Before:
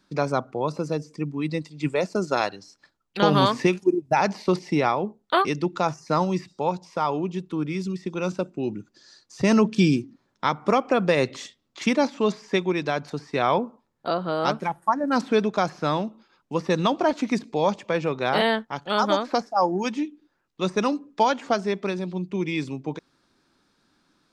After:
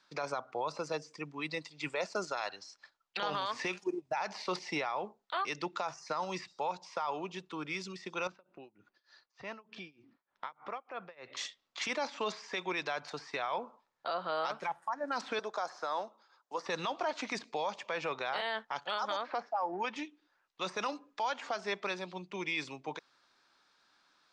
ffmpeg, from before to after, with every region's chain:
-filter_complex "[0:a]asettb=1/sr,asplit=3[a][b][c];[a]atrim=end=8.274[d];[b]atrim=start=8.27:end=11.37,asetpts=PTS-STARTPTS,afade=t=in:d=0.004:c=qsin,afade=t=out:st=3.096:d=0.004:c=qsin,lowpass=2.8k,acompressor=threshold=-36dB:ratio=2.5:attack=3.2:release=140:knee=1:detection=peak,tremolo=f=3.3:d=0.94[e];[c]atrim=start=11.366[f];[d][e]acrossfade=d=0.004:c1=hsin:c2=qsin[g];[g][f]acrossfade=d=0.004:c1=qsin:c2=hsin,asettb=1/sr,asplit=3[h][i][j];[h]atrim=end=15.394[k];[i]atrim=start=15.39:end=16.66,asetpts=PTS-STARTPTS,afade=t=in:d=0.004:c=qsin,afade=t=out:st=1.266:d=0.004:c=qsin,highpass=380,equalizer=f=2.6k:t=o:w=0.92:g=-13[l];[j]atrim=start=16.656[m];[k][l]acrossfade=d=0.004:c1=hsin:c2=qsin[n];[n][m]acrossfade=d=0.004:c1=qsin:c2=hsin,asettb=1/sr,asplit=3[o][p][q];[o]atrim=end=19.214[r];[p]atrim=start=19.21:end=19.96,asetpts=PTS-STARTPTS,afade=t=in:d=0.004:c=qsin,afade=t=out:st=0.746:d=0.004:c=qsin,highpass=160,lowpass=2.7k,acompressor=threshold=-22dB:ratio=6:attack=3.2:release=140:knee=1:detection=peak[s];[q]atrim=start=19.956[t];[r][s]acrossfade=d=0.004:c1=hsin:c2=qsin[u];[u][t]acrossfade=d=0.004:c1=qsin:c2=hsin,acrossover=split=590 7500:gain=0.112 1 0.1[v][w][x];[v][w][x]amix=inputs=3:normalize=0,acompressor=threshold=-26dB:ratio=6,alimiter=level_in=1dB:limit=-24dB:level=0:latency=1:release=17,volume=-1dB"

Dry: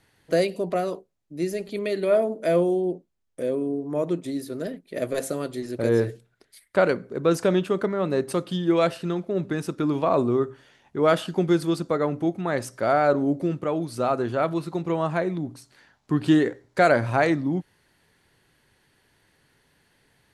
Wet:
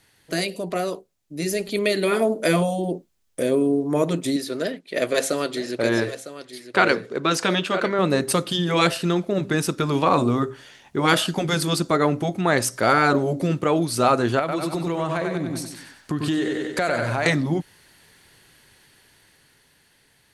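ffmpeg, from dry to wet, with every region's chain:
-filter_complex "[0:a]asettb=1/sr,asplit=3[a][b][c];[a]atrim=end=4.364[d];[b]atrim=start=4.36:end=7.99,asetpts=PTS-STARTPTS,afade=t=in:d=0.004:c=qsin,afade=t=out:st=3.626:d=0.004:c=qsin,lowpass=3.6k,aemphasis=mode=production:type=bsi,aecho=1:1:955:0.237,atrim=end_sample=160083[e];[c]atrim=start=7.986[f];[d][e]acrossfade=d=0.004:c1=hsin:c2=qsin[g];[g][f]acrossfade=d=0.004:c1=qsin:c2=hsin,asettb=1/sr,asplit=3[h][i][j];[h]atrim=end=14.394[k];[i]atrim=start=14.39:end=17.26,asetpts=PTS-STARTPTS,afade=t=in:d=0.004:c=qsin,afade=t=out:st=2.866:d=0.004:c=qsin,aecho=1:1:94|188|282|376|470:0.531|0.234|0.103|0.0452|0.0199,atrim=end_sample=126567,acompressor=threshold=-29dB:ratio=4:attack=3.2:release=140:knee=1:detection=peak[l];[j]atrim=start=17.256[m];[k][l]acrossfade=d=0.004:c1=hsin:c2=qsin[n];[n][m]acrossfade=d=0.004:c1=qsin:c2=hsin,afftfilt=real='re*lt(hypot(re,im),0.631)':imag='im*lt(hypot(re,im),0.631)':win_size=1024:overlap=0.75,highshelf=f=2.2k:g=8.5,dynaudnorm=f=180:g=17:m=7dB"

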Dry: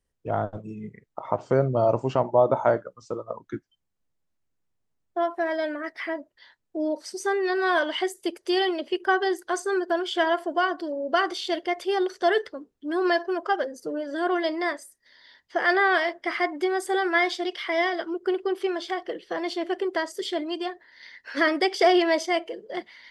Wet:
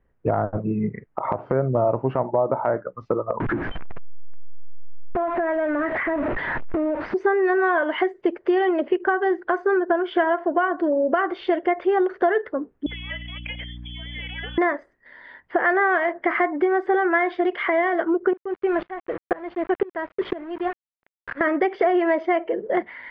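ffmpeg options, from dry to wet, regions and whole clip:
-filter_complex "[0:a]asettb=1/sr,asplit=3[a][b][c];[a]atrim=end=3.404[d];[b]atrim=start=3.4:end=7.14,asetpts=PTS-STARTPTS,afade=t=in:d=0.004:c=qsin,afade=t=out:st=3.736:d=0.004:c=qsin,aeval=exprs='val(0)+0.5*0.0282*sgn(val(0))':c=same,aemphasis=mode=reproduction:type=50fm,acompressor=threshold=-34dB:ratio=6:attack=3.2:release=140:knee=1:detection=peak[e];[c]atrim=start=7.136[f];[d][e]acrossfade=d=0.004:c1=hsin:c2=qsin[g];[g][f]acrossfade=d=0.004:c1=qsin:c2=hsin,asettb=1/sr,asplit=3[h][i][j];[h]atrim=end=12.864[k];[i]atrim=start=12.86:end=14.58,asetpts=PTS-STARTPTS,afade=t=in:d=0.004:c=qsin,afade=t=out:st=1.716:d=0.004:c=qsin,lowpass=f=3.1k:t=q:w=0.5098,lowpass=f=3.1k:t=q:w=0.6013,lowpass=f=3.1k:t=q:w=0.9,lowpass=f=3.1k:t=q:w=2.563,afreqshift=-3700,acompressor=threshold=-33dB:ratio=16:attack=3.2:release=140:knee=1:detection=peak,aeval=exprs='val(0)+0.00355*(sin(2*PI*60*n/s)+sin(2*PI*2*60*n/s)/2+sin(2*PI*3*60*n/s)/3+sin(2*PI*4*60*n/s)/4+sin(2*PI*5*60*n/s)/5)':c=same[l];[j]atrim=start=14.576[m];[k][l]acrossfade=d=0.004:c1=hsin:c2=qsin[n];[n][m]acrossfade=d=0.004:c1=qsin:c2=hsin,asettb=1/sr,asplit=3[o][p][q];[o]atrim=end=18.334[r];[p]atrim=start=18.33:end=21.41,asetpts=PTS-STARTPTS,afade=t=in:d=0.004:c=qsin,afade=t=out:st=3.076:d=0.004:c=qsin,aeval=exprs='val(0)*gte(abs(val(0)),0.0188)':c=same,aeval=exprs='val(0)*pow(10,-22*if(lt(mod(-2*n/s,1),2*abs(-2)/1000),1-mod(-2*n/s,1)/(2*abs(-2)/1000),(mod(-2*n/s,1)-2*abs(-2)/1000)/(1-2*abs(-2)/1000))/20)':c=same[s];[q]atrim=start=21.406[t];[r][s]acrossfade=d=0.004:c1=hsin:c2=qsin[u];[u][t]acrossfade=d=0.004:c1=qsin:c2=hsin,lowpass=f=2k:w=0.5412,lowpass=f=2k:w=1.3066,acompressor=threshold=-31dB:ratio=6,alimiter=level_in=21.5dB:limit=-1dB:release=50:level=0:latency=1,volume=-8dB"

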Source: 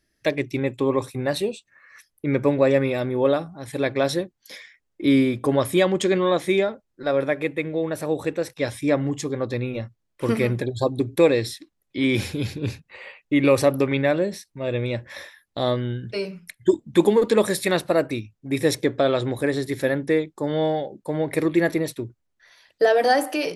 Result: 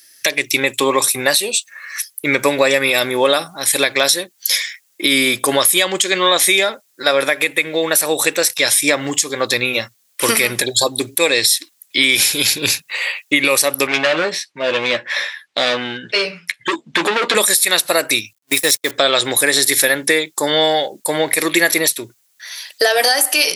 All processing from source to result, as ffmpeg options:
-filter_complex "[0:a]asettb=1/sr,asplit=3[a][b][c];[a]atrim=end=13.874[d];[b]atrim=start=13.87:end=17.35,asetpts=PTS-STARTPTS,afade=t=in:d=0.004:c=qsin,afade=t=out:st=3.476:d=0.004:c=qsin,volume=23dB,asoftclip=hard,volume=-23dB,highpass=120,lowpass=2.8k,asplit=2[e][f];[f]adelay=12,volume=-7.5dB[g];[e][g]amix=inputs=2:normalize=0,atrim=end_sample=153468[h];[c]atrim=start=17.346[i];[d][h]acrossfade=d=0.004:c1=hsin:c2=qsin[j];[j][i]acrossfade=d=0.004:c1=qsin:c2=hsin,asettb=1/sr,asplit=3[k][l][m];[k]atrim=end=18.334[n];[l]atrim=start=18.33:end=18.91,asetpts=PTS-STARTPTS,afade=t=in:d=0.004:c=qsin,afade=t=out:st=0.576:d=0.004:c=qsin,aeval=exprs='val(0)+0.5*0.0178*sgn(val(0))':c=same,agate=range=-48dB:threshold=-27dB:ratio=16:release=100:detection=peak[o];[m]atrim=start=18.906[p];[n][o]acrossfade=d=0.004:c1=hsin:c2=qsin[q];[q][p]acrossfade=d=0.004:c1=qsin:c2=hsin,aderivative,acompressor=threshold=-40dB:ratio=6,alimiter=level_in=31.5dB:limit=-1dB:release=50:level=0:latency=1,volume=-1dB"

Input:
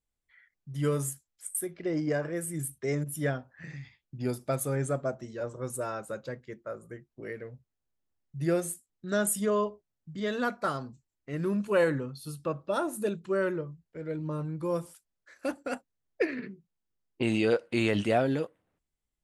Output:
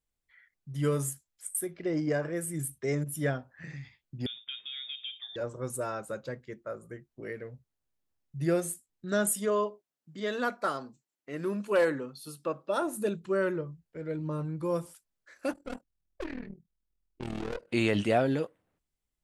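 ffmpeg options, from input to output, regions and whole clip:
-filter_complex "[0:a]asettb=1/sr,asplit=3[a][b][c];[a]atrim=end=4.264[d];[b]atrim=start=4.26:end=5.36,asetpts=PTS-STARTPTS,afade=t=in:d=0.004:c=qsin,afade=t=out:st=1.096:d=0.004:c=qsin,highpass=f=150:w=0.5412,highpass=f=150:w=1.3066,acompressor=threshold=-35dB:ratio=10:attack=3.2:release=140:knee=1:detection=peak,lowpass=f=3.2k:t=q:w=0.5098,lowpass=f=3.2k:t=q:w=0.6013,lowpass=f=3.2k:t=q:w=0.9,lowpass=f=3.2k:t=q:w=2.563,afreqshift=-3800[e];[c]atrim=start=5.356[f];[d][e]acrossfade=d=0.004:c1=hsin:c2=qsin[g];[g][f]acrossfade=d=0.004:c1=qsin:c2=hsin,asettb=1/sr,asplit=3[h][i][j];[h]atrim=end=9.314[k];[i]atrim=start=9.31:end=12.82,asetpts=PTS-STARTPTS,afade=t=in:d=0.004:c=qsin,afade=t=out:st=3.506:d=0.004:c=qsin,highpass=250,asoftclip=type=hard:threshold=-17dB[l];[j]atrim=start=12.816[m];[k][l]acrossfade=d=0.004:c1=hsin:c2=qsin[n];[n][m]acrossfade=d=0.004:c1=qsin:c2=hsin,asettb=1/sr,asplit=3[o][p][q];[o]atrim=end=15.534[r];[p]atrim=start=15.53:end=17.69,asetpts=PTS-STARTPTS,afade=t=in:d=0.004:c=qsin,afade=t=out:st=2.156:d=0.004:c=qsin,lowshelf=f=320:g=9.5,aeval=exprs='(tanh(35.5*val(0)+0.65)-tanh(0.65))/35.5':c=same,tremolo=f=40:d=0.824[s];[q]atrim=start=17.686[t];[r][s]acrossfade=d=0.004:c1=hsin:c2=qsin[u];[u][t]acrossfade=d=0.004:c1=qsin:c2=hsin"

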